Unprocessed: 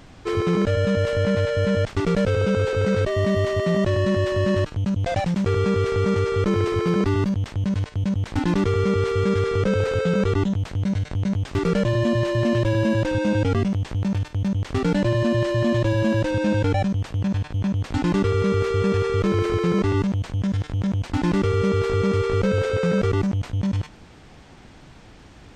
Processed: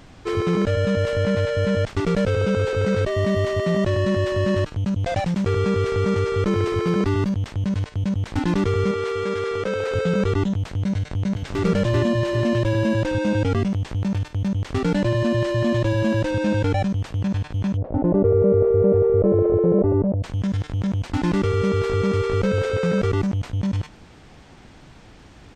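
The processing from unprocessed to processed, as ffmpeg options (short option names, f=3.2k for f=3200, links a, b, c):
-filter_complex "[0:a]asettb=1/sr,asplit=3[a][b][c];[a]atrim=end=8.914[d];[b]atrim=start=8.91:end=9.93,asetpts=PTS-STARTPTS,afade=t=in:d=0.004:c=qsin,afade=t=out:st=1.016:d=0.004:c=qsin,bass=f=250:g=-13,treble=f=4k:g=-2[e];[c]atrim=start=9.926[f];[d][e]acrossfade=d=0.004:c1=hsin:c2=qsin[g];[g][f]acrossfade=d=0.004:c1=qsin:c2=hsin,asplit=2[h][i];[i]afade=t=in:st=10.97:d=0.01,afade=t=out:st=11.64:d=0.01,aecho=0:1:390|780|1170|1560:0.794328|0.238298|0.0714895|0.0214469[j];[h][j]amix=inputs=2:normalize=0,asplit=3[k][l][m];[k]afade=t=out:st=17.76:d=0.02[n];[l]lowpass=f=590:t=q:w=4.5,afade=t=in:st=17.76:d=0.02,afade=t=out:st=20.22:d=0.02[o];[m]afade=t=in:st=20.22:d=0.02[p];[n][o][p]amix=inputs=3:normalize=0"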